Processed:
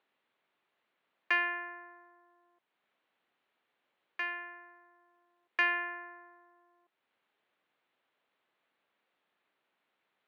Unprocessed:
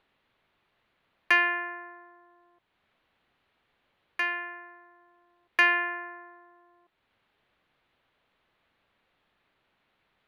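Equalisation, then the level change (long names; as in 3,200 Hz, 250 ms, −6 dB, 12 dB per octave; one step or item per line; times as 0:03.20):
high-pass filter 250 Hz 12 dB per octave
low-pass filter 4,700 Hz 12 dB per octave
−7.0 dB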